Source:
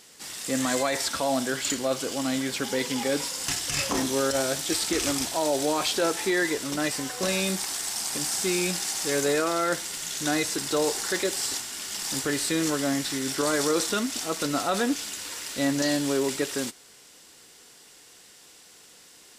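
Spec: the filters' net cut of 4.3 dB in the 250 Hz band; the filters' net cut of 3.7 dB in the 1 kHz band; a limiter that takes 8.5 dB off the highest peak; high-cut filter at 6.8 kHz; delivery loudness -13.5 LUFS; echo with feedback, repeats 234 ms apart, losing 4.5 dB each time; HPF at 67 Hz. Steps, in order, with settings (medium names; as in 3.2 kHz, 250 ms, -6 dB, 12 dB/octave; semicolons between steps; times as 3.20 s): high-pass 67 Hz; low-pass 6.8 kHz; peaking EQ 250 Hz -5 dB; peaking EQ 1 kHz -5 dB; peak limiter -22.5 dBFS; feedback delay 234 ms, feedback 60%, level -4.5 dB; trim +16.5 dB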